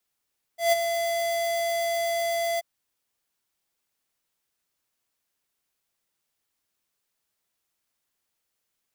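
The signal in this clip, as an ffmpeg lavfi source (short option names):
-f lavfi -i "aevalsrc='0.119*(2*lt(mod(677*t,1),0.5)-1)':d=2.033:s=44100,afade=t=in:d=0.144,afade=t=out:st=0.144:d=0.021:silence=0.398,afade=t=out:st=2.01:d=0.023"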